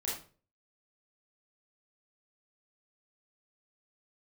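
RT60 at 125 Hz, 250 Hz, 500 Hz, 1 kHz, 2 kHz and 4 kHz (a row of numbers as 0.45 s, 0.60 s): 0.50 s, 0.45 s, 0.45 s, 0.35 s, 0.35 s, 0.30 s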